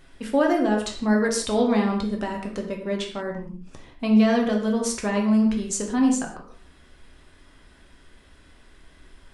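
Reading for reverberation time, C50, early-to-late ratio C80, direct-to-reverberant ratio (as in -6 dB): no single decay rate, 6.0 dB, 9.0 dB, 0.5 dB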